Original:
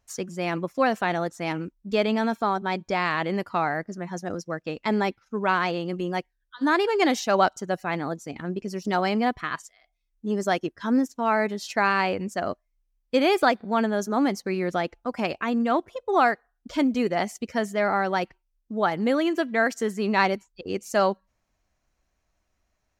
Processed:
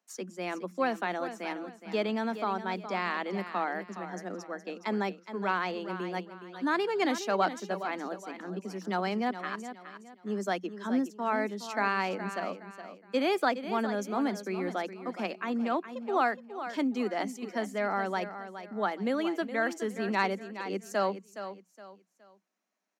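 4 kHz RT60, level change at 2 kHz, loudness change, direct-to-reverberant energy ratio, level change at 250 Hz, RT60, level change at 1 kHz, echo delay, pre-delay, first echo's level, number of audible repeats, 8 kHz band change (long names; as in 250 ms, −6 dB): no reverb audible, −6.5 dB, −7.0 dB, no reverb audible, −6.5 dB, no reverb audible, −6.5 dB, 417 ms, no reverb audible, −11.0 dB, 3, −7.0 dB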